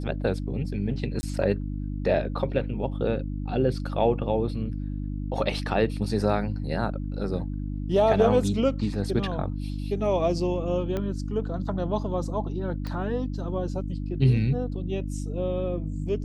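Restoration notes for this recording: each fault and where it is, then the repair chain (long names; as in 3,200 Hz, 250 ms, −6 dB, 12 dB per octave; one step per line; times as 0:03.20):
mains hum 50 Hz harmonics 6 −31 dBFS
0:01.21–0:01.23: drop-out 20 ms
0:10.97: click −17 dBFS
0:12.87: click −21 dBFS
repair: click removal
hum removal 50 Hz, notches 6
repair the gap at 0:01.21, 20 ms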